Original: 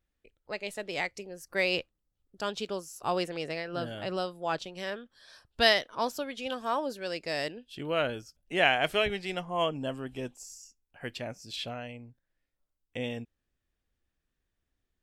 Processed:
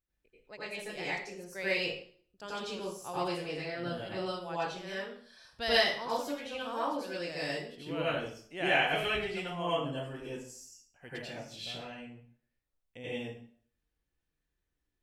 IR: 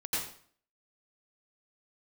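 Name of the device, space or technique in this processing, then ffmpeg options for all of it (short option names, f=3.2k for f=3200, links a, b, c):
bathroom: -filter_complex "[1:a]atrim=start_sample=2205[a];[0:a][a]afir=irnorm=-1:irlink=0,volume=-8dB"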